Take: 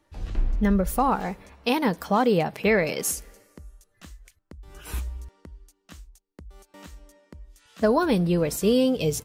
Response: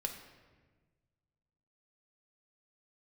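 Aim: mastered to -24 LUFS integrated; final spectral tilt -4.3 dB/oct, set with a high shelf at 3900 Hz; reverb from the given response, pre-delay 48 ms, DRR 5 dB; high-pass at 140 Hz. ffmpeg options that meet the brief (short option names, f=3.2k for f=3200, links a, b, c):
-filter_complex "[0:a]highpass=140,highshelf=f=3.9k:g=4.5,asplit=2[a][b];[1:a]atrim=start_sample=2205,adelay=48[c];[b][c]afir=irnorm=-1:irlink=0,volume=-5.5dB[d];[a][d]amix=inputs=2:normalize=0,volume=-1.5dB"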